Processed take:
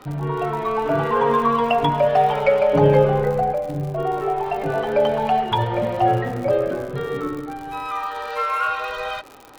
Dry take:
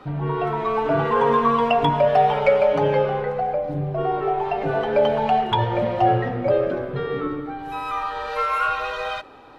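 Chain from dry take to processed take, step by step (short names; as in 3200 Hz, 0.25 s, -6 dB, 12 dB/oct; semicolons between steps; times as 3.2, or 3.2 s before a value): 2.73–3.53 low shelf 430 Hz +10.5 dB; crackle 87/s -30 dBFS; 7.86–8.9 low shelf 120 Hz -10.5 dB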